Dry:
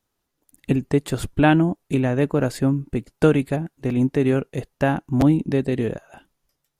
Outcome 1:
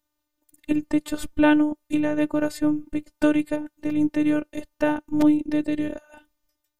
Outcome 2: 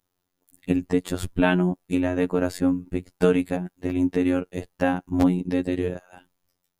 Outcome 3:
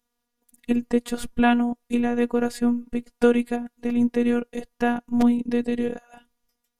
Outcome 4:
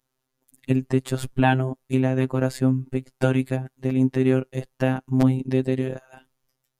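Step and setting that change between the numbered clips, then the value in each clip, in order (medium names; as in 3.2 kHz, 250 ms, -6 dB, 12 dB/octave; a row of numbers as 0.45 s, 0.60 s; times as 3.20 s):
robot voice, frequency: 300 Hz, 90 Hz, 240 Hz, 130 Hz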